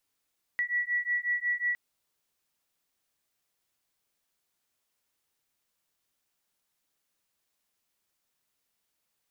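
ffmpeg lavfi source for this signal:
-f lavfi -i "aevalsrc='0.0316*(sin(2*PI*1940*t)+sin(2*PI*1945.5*t))':d=1.16:s=44100"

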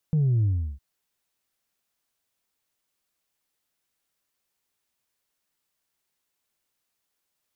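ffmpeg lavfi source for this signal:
-f lavfi -i "aevalsrc='0.112*clip((0.66-t)/0.35,0,1)*tanh(1.12*sin(2*PI*160*0.66/log(65/160)*(exp(log(65/160)*t/0.66)-1)))/tanh(1.12)':d=0.66:s=44100"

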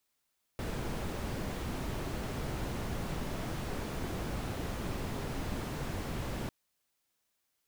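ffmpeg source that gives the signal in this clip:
-f lavfi -i "anoisesrc=c=brown:a=0.0741:d=5.9:r=44100:seed=1"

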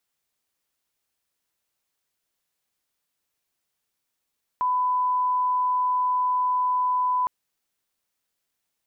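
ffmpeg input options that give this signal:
-f lavfi -i "sine=f=1000:d=2.66:r=44100,volume=-1.94dB"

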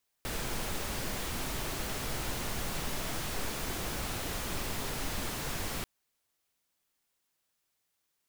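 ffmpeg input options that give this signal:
-f lavfi -i "anoisesrc=c=pink:a=0.0912:d=5.59:r=44100:seed=1"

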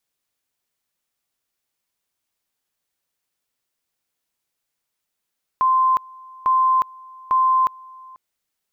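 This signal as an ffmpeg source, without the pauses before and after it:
-f lavfi -i "aevalsrc='pow(10,(-13.5-25*gte(mod(t,0.85),0.36))/20)*sin(2*PI*1040*t)':d=2.55:s=44100"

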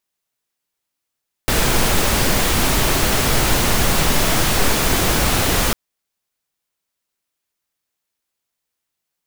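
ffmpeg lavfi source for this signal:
-f lavfi -i "anoisesrc=c=pink:a=0.813:d=4.25:r=44100:seed=1"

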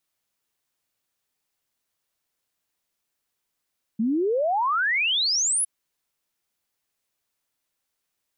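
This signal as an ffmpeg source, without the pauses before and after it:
-f lavfi -i "aevalsrc='0.1*clip(min(t,1.66-t)/0.01,0,1)*sin(2*PI*210*1.66/log(11000/210)*(exp(log(11000/210)*t/1.66)-1))':d=1.66:s=44100"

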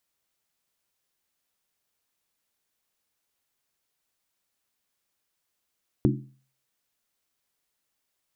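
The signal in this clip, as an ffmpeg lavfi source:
-f lavfi -i "aevalsrc='0.112*pow(10,-3*t/0.45)*sin(2*PI*133*t)+0.1*pow(10,-3*t/0.356)*sin(2*PI*212*t)+0.0891*pow(10,-3*t/0.308)*sin(2*PI*284.1*t)+0.0794*pow(10,-3*t/0.297)*sin(2*PI*305.4*t)+0.0708*pow(10,-3*t/0.276)*sin(2*PI*352.8*t)':d=0.63:s=44100"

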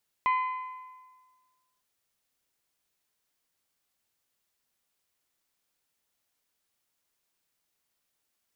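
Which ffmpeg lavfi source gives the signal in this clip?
-f lavfi -i "aevalsrc='0.0891*pow(10,-3*t/1.52)*sin(2*PI*1020*t)+0.0316*pow(10,-3*t/1.235)*sin(2*PI*2040*t)+0.0112*pow(10,-3*t/1.169)*sin(2*PI*2448*t)+0.00398*pow(10,-3*t/1.093)*sin(2*PI*3060*t)+0.00141*pow(10,-3*t/1.003)*sin(2*PI*4080*t)':d=1.55:s=44100"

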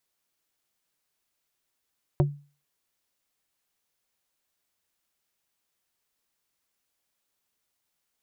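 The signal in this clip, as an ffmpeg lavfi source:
-f lavfi -i "aevalsrc='0.168*pow(10,-3*t/0.36)*sin(2*PI*144*t)+0.106*pow(10,-3*t/0.12)*sin(2*PI*360*t)+0.0668*pow(10,-3*t/0.068)*sin(2*PI*576*t)+0.0422*pow(10,-3*t/0.052)*sin(2*PI*720*t)+0.0266*pow(10,-3*t/0.038)*sin(2*PI*936*t)':d=0.45:s=44100"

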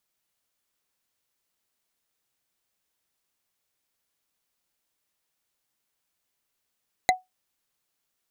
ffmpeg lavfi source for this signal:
-f lavfi -i "aevalsrc='0.237*pow(10,-3*t/0.17)*sin(2*PI*741*t)+0.188*pow(10,-3*t/0.05)*sin(2*PI*2042.9*t)+0.15*pow(10,-3*t/0.022)*sin(2*PI*4004.4*t)+0.119*pow(10,-3*t/0.012)*sin(2*PI*6619.4*t)+0.0944*pow(10,-3*t/0.008)*sin(2*PI*9884.9*t)':d=0.45:s=44100"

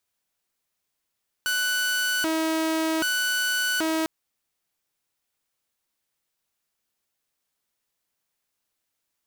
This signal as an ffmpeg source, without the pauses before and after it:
-f lavfi -i "aevalsrc='0.1*(2*mod((905*t+585/0.64*(0.5-abs(mod(0.64*t,1)-0.5))),1)-1)':d=2.6:s=44100"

